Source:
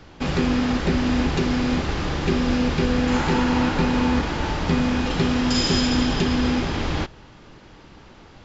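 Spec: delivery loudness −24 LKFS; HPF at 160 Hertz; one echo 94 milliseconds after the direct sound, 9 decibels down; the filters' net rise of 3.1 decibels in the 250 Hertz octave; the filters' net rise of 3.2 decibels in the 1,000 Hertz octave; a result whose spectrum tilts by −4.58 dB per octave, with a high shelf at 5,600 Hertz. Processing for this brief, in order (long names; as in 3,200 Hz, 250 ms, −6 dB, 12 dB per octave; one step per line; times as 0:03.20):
high-pass filter 160 Hz
parametric band 250 Hz +4 dB
parametric band 1,000 Hz +3.5 dB
high-shelf EQ 5,600 Hz +8 dB
single-tap delay 94 ms −9 dB
level −4.5 dB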